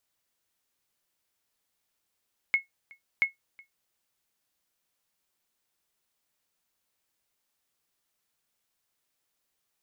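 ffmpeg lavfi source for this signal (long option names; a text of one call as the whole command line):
ffmpeg -f lavfi -i "aevalsrc='0.178*(sin(2*PI*2180*mod(t,0.68))*exp(-6.91*mod(t,0.68)/0.14)+0.0473*sin(2*PI*2180*max(mod(t,0.68)-0.37,0))*exp(-6.91*max(mod(t,0.68)-0.37,0)/0.14))':duration=1.36:sample_rate=44100" out.wav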